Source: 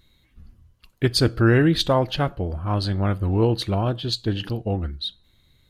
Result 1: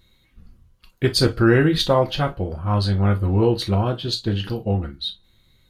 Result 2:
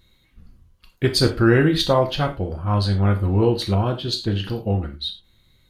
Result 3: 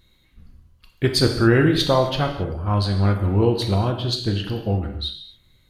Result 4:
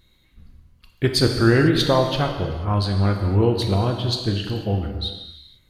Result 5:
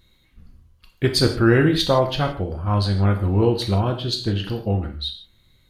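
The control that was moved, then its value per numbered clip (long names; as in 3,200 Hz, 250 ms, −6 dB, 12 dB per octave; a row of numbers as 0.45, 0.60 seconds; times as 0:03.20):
reverb whose tail is shaped and stops, gate: 80, 130, 300, 520, 190 milliseconds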